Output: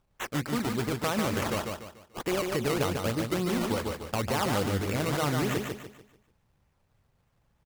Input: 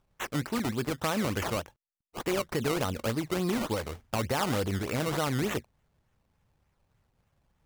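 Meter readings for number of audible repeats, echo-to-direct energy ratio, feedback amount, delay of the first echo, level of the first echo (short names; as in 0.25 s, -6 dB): 4, -4.0 dB, 36%, 0.146 s, -4.5 dB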